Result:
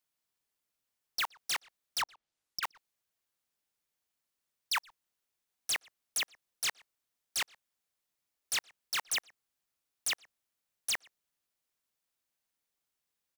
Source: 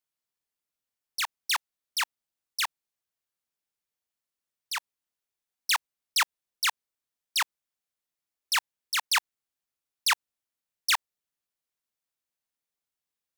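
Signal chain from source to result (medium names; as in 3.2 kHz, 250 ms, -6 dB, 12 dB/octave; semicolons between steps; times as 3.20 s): 2.01–2.63 s: low-pass that closes with the level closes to 780 Hz, closed at -29.5 dBFS; wavefolder -28.5 dBFS; speakerphone echo 120 ms, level -22 dB; trim +3 dB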